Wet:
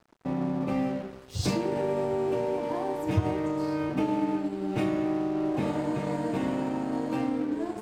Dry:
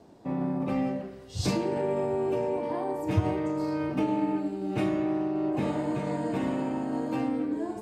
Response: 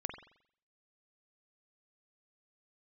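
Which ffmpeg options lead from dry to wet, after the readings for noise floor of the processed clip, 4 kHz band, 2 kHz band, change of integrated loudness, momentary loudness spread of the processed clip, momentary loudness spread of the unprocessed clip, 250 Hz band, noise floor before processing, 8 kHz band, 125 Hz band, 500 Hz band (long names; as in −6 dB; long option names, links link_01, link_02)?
−45 dBFS, +1.0 dB, +1.0 dB, 0.0 dB, 3 LU, 4 LU, 0.0 dB, −45 dBFS, can't be measured, 0.0 dB, 0.0 dB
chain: -filter_complex "[0:a]asplit=2[link_01][link_02];[link_02]acompressor=threshold=-36dB:ratio=6,volume=1dB[link_03];[link_01][link_03]amix=inputs=2:normalize=0,aeval=exprs='sgn(val(0))*max(abs(val(0))-0.00708,0)':channel_layout=same,volume=-1.5dB"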